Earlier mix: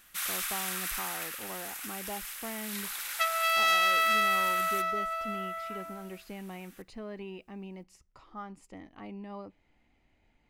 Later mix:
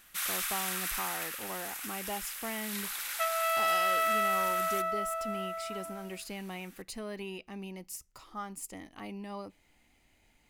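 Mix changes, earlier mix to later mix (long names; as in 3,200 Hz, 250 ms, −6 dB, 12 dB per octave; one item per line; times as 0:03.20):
speech: remove head-to-tape spacing loss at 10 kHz 23 dB
second sound: add spectral tilt −5.5 dB per octave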